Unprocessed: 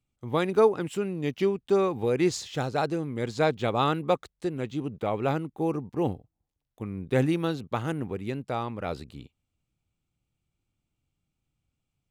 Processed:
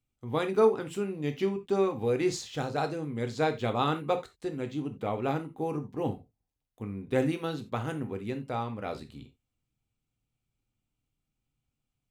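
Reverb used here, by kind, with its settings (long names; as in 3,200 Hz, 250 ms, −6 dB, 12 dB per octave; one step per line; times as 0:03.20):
reverb whose tail is shaped and stops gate 110 ms falling, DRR 6 dB
level −4 dB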